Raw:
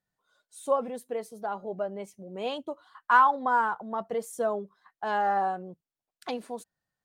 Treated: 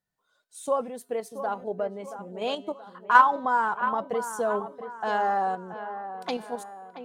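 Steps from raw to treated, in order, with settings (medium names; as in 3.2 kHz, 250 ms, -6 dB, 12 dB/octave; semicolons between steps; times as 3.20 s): dynamic bell 6.5 kHz, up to +5 dB, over -52 dBFS, Q 1.3; in parallel at +2.5 dB: level held to a coarse grid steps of 17 dB; on the sum: feedback comb 140 Hz, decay 1 s, harmonics odd, mix 50%; feedback echo behind a low-pass 677 ms, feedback 47%, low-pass 2.4 kHz, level -11 dB; trim +3 dB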